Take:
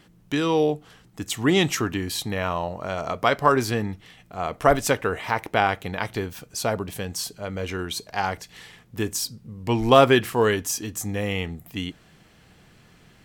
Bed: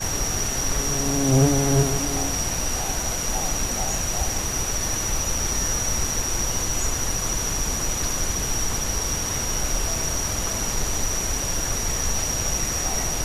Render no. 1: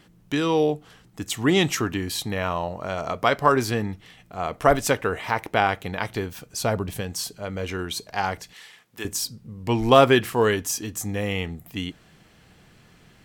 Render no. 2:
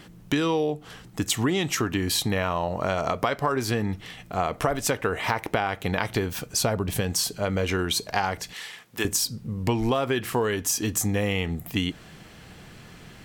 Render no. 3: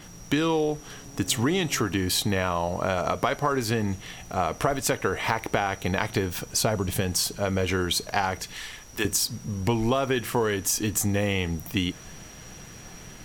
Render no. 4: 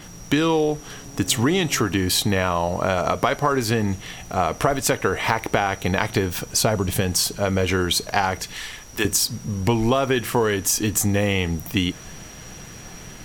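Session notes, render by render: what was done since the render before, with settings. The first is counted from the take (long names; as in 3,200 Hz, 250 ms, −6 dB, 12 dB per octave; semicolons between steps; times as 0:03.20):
0:06.59–0:07.01: low-shelf EQ 120 Hz +8.5 dB; 0:08.53–0:09.05: high-pass filter 1,000 Hz 6 dB per octave
in parallel at +3 dB: brickwall limiter −11 dBFS, peak gain reduction 9.5 dB; on the sum: downward compressor 10 to 1, threshold −21 dBFS, peak gain reduction 16 dB
mix in bed −22.5 dB
level +4.5 dB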